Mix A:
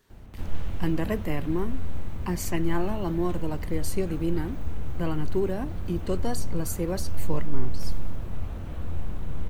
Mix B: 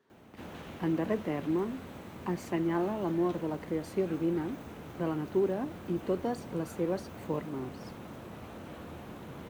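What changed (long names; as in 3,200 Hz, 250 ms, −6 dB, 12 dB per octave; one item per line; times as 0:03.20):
speech: add low-pass filter 1,100 Hz 6 dB per octave
master: add high-pass filter 220 Hz 12 dB per octave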